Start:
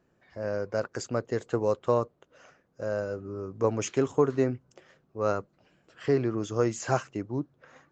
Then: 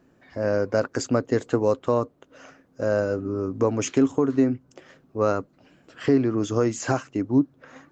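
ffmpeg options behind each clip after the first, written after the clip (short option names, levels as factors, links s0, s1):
-af "equalizer=f=270:t=o:w=0.27:g=11,alimiter=limit=0.133:level=0:latency=1:release=484,volume=2.37"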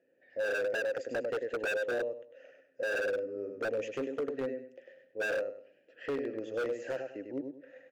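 -filter_complex "[0:a]asplit=3[s0][s1][s2];[s0]bandpass=f=530:t=q:w=8,volume=1[s3];[s1]bandpass=f=1840:t=q:w=8,volume=0.501[s4];[s2]bandpass=f=2480:t=q:w=8,volume=0.355[s5];[s3][s4][s5]amix=inputs=3:normalize=0,aecho=1:1:99|198|297|396:0.531|0.149|0.0416|0.0117,aeval=exprs='0.0447*(abs(mod(val(0)/0.0447+3,4)-2)-1)':c=same"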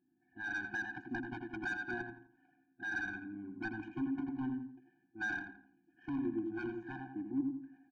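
-filter_complex "[0:a]adynamicsmooth=sensitivity=1.5:basefreq=800,asplit=2[s0][s1];[s1]adelay=84,lowpass=f=2700:p=1,volume=0.398,asplit=2[s2][s3];[s3]adelay=84,lowpass=f=2700:p=1,volume=0.37,asplit=2[s4][s5];[s5]adelay=84,lowpass=f=2700:p=1,volume=0.37,asplit=2[s6][s7];[s7]adelay=84,lowpass=f=2700:p=1,volume=0.37[s8];[s2][s4][s6][s8]amix=inputs=4:normalize=0[s9];[s0][s9]amix=inputs=2:normalize=0,afftfilt=real='re*eq(mod(floor(b*sr/1024/360),2),0)':imag='im*eq(mod(floor(b*sr/1024/360),2),0)':win_size=1024:overlap=0.75,volume=1.58"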